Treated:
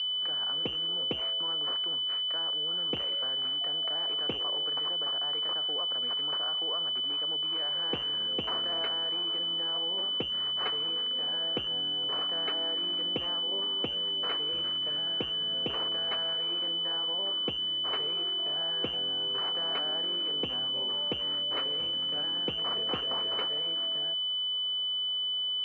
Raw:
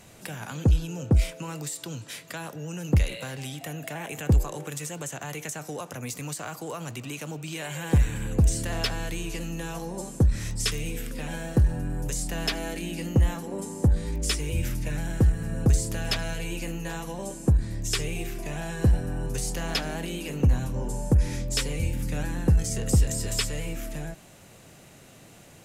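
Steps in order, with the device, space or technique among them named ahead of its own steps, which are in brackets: toy sound module (decimation joined by straight lines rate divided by 6×; class-D stage that switches slowly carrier 3 kHz; cabinet simulation 510–4900 Hz, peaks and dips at 570 Hz -3 dB, 840 Hz -5 dB, 1.3 kHz +3 dB, 2.8 kHz +7 dB, 4.7 kHz +9 dB)

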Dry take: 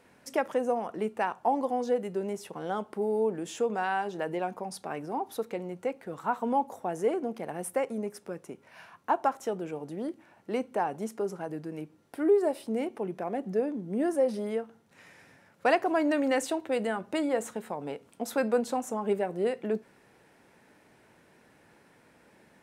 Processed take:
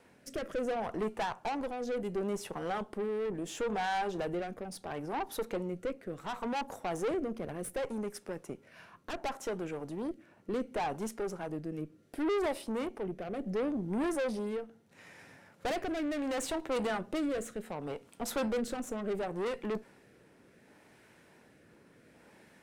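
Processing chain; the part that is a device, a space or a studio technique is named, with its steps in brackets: overdriven rotary cabinet (valve stage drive 33 dB, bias 0.6; rotary cabinet horn 0.7 Hz); trim +5 dB

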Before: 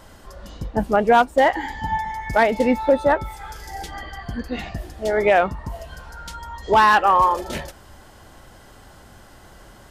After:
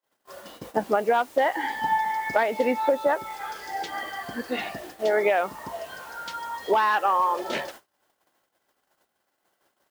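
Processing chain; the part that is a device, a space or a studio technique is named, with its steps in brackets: baby monitor (band-pass 340–4500 Hz; compression 8:1, threshold -21 dBFS, peak gain reduction 11 dB; white noise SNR 24 dB; gate -44 dBFS, range -45 dB); trim +2.5 dB

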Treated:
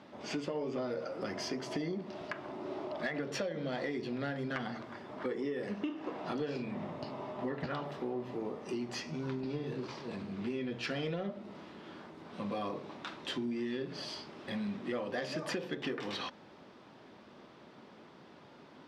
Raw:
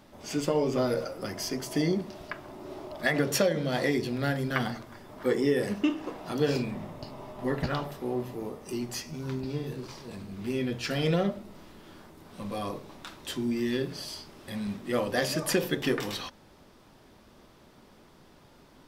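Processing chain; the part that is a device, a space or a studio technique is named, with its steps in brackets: AM radio (band-pass 160–3800 Hz; compression 6:1, threshold -35 dBFS, peak gain reduction 14 dB; saturation -26.5 dBFS, distortion -24 dB); trim +2 dB

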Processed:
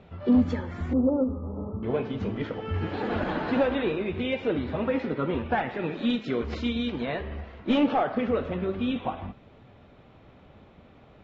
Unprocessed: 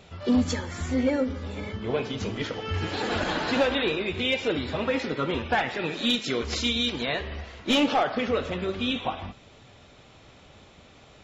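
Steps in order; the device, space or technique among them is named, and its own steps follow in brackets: phone in a pocket (low-pass 3.3 kHz 12 dB/octave; peaking EQ 210 Hz +3 dB 0.8 oct; treble shelf 2.1 kHz -11 dB); 0.93–1.83 s: steep low-pass 1.3 kHz 96 dB/octave

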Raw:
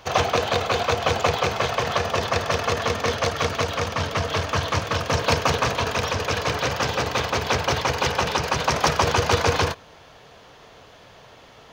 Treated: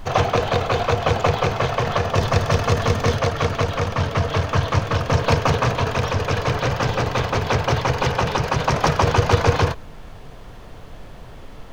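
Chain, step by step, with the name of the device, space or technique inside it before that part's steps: car interior (peaking EQ 120 Hz +6.5 dB 0.99 oct; treble shelf 2.5 kHz -7.5 dB; brown noise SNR 16 dB); 2.15–3.19 s: tone controls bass +4 dB, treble +5 dB; trim +2.5 dB

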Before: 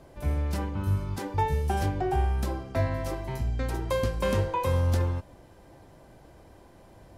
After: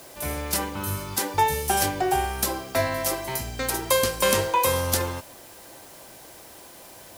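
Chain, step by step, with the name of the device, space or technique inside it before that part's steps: turntable without a phono preamp (RIAA curve recording; white noise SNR 24 dB); trim +7.5 dB

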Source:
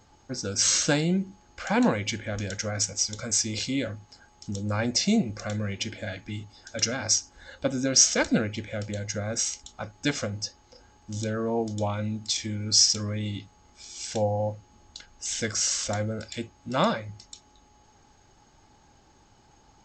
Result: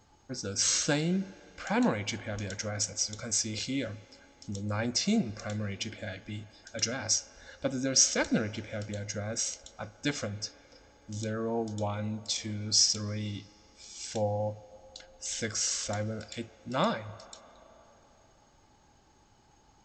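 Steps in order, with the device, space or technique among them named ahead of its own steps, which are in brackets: filtered reverb send (on a send: high-pass 390 Hz 12 dB/octave + low-pass 3.4 kHz 12 dB/octave + reverberation RT60 3.9 s, pre-delay 32 ms, DRR 16.5 dB); on the sum: trim -4.5 dB

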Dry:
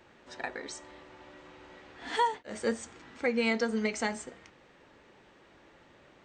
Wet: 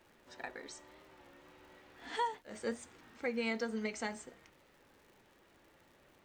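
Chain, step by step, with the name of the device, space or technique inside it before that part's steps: warped LP (warped record 33 1/3 rpm, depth 100 cents; crackle 140 per s -48 dBFS; pink noise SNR 34 dB); trim -7.5 dB

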